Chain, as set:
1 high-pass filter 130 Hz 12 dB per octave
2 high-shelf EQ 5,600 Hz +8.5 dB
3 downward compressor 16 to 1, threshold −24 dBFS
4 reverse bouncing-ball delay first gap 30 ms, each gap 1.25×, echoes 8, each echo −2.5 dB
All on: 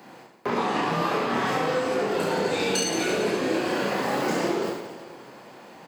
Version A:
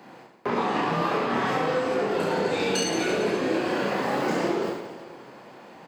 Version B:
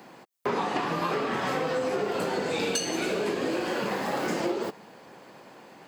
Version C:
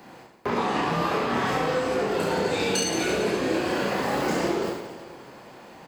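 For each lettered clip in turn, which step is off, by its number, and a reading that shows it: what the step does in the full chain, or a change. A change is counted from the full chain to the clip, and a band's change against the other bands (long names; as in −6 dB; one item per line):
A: 2, 8 kHz band −3.5 dB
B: 4, change in integrated loudness −3.5 LU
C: 1, 125 Hz band +2.0 dB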